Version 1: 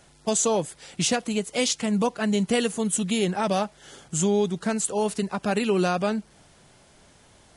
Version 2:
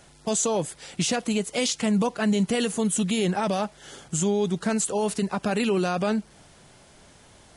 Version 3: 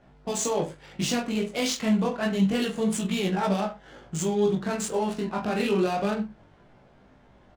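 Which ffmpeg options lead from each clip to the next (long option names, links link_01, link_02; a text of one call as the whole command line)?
ffmpeg -i in.wav -af "alimiter=limit=-18.5dB:level=0:latency=1:release=21,volume=2.5dB" out.wav
ffmpeg -i in.wav -af "aecho=1:1:20|42|66.2|92.82|122.1:0.631|0.398|0.251|0.158|0.1,flanger=delay=15.5:depth=7.5:speed=0.28,adynamicsmooth=sensitivity=7.5:basefreq=1700" out.wav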